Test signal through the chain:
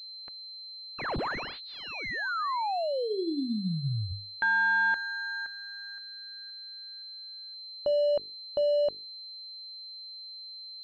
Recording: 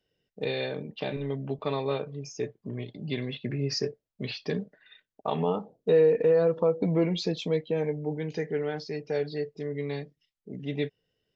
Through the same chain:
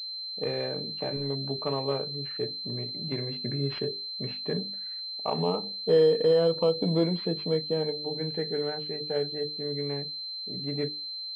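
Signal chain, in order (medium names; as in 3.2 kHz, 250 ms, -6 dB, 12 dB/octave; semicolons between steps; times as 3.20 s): hum notches 50/100/150/200/250/300/350/400/450 Hz; class-D stage that switches slowly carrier 4.1 kHz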